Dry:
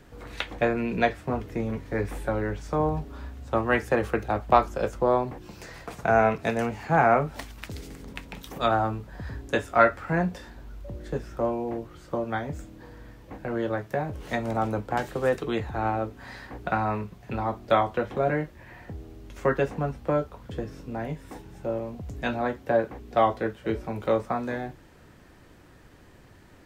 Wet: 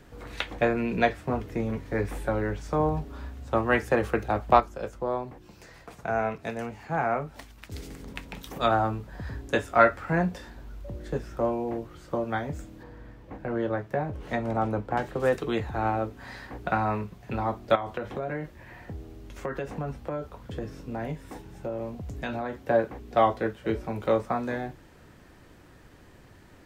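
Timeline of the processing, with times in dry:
4.60–7.72 s: gain -7 dB
12.83–15.20 s: treble shelf 3.8 kHz -10.5 dB
17.75–22.67 s: compression 12:1, threshold -27 dBFS

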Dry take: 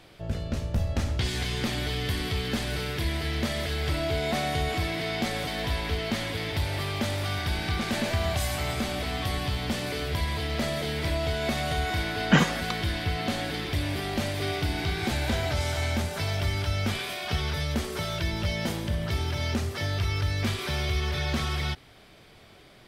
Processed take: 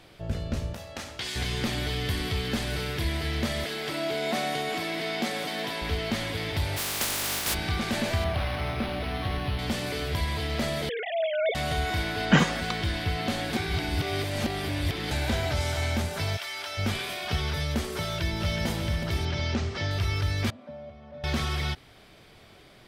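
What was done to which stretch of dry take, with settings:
0.73–1.36 s: high-pass 810 Hz 6 dB/octave
3.64–5.82 s: high-pass 180 Hz 24 dB/octave
6.76–7.53 s: spectral contrast reduction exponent 0.2
8.24–9.59 s: decimation joined by straight lines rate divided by 6×
10.89–11.55 s: formants replaced by sine waves
12.25–12.94 s: peaking EQ 12 kHz -10 dB 0.27 oct
13.53–15.11 s: reverse
16.36–16.77 s: high-pass 1.2 kHz -> 530 Hz
18.03–18.66 s: echo throw 370 ms, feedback 60%, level -6.5 dB
19.25–19.91 s: low-pass 6.3 kHz 24 dB/octave
20.50–21.24 s: two resonant band-passes 380 Hz, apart 1.2 oct

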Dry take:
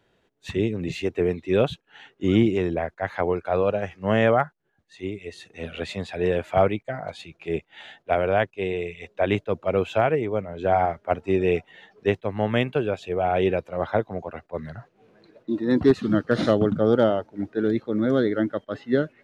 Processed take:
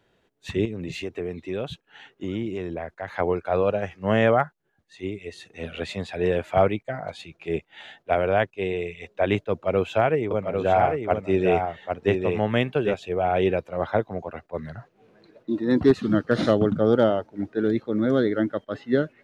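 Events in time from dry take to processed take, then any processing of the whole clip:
0.65–3.08 s: compression 2.5:1, threshold -29 dBFS
9.51–12.94 s: delay 798 ms -5 dB

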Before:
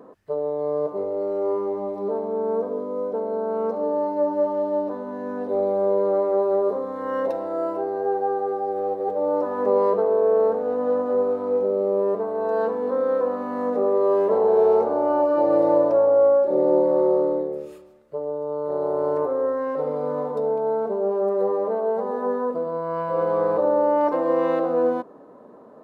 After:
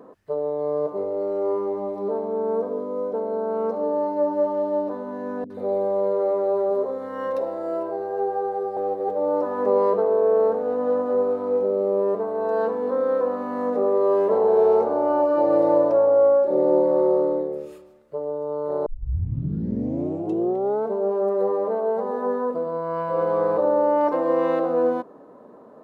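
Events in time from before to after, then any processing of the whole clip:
5.44–8.77 s: three bands offset in time lows, highs, mids 60/130 ms, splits 270/1200 Hz
18.86 s: tape start 1.99 s

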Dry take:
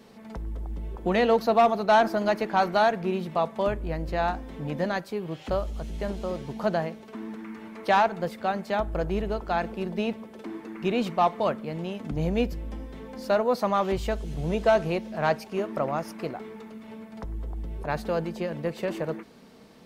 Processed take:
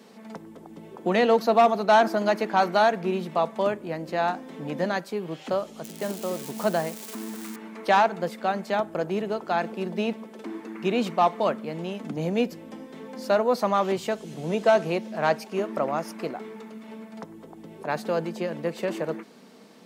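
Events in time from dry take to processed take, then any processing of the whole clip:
5.84–7.56 s: zero-crossing glitches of -29 dBFS
whole clip: high-pass 170 Hz 24 dB/octave; peaking EQ 7.4 kHz +3 dB 0.77 oct; trim +1.5 dB

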